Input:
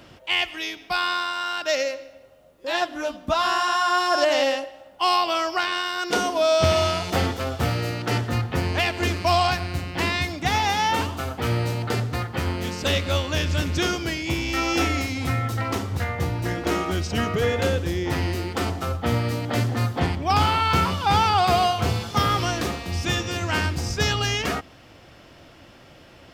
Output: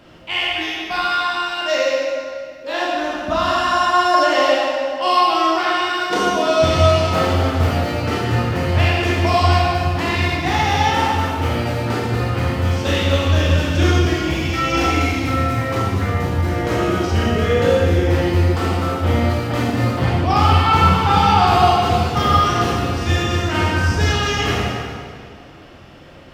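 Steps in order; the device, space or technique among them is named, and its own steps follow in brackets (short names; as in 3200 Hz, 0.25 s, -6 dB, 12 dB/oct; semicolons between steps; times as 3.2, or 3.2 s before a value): swimming-pool hall (reverb RT60 2.1 s, pre-delay 21 ms, DRR -5 dB; high shelf 3800 Hz -6.5 dB)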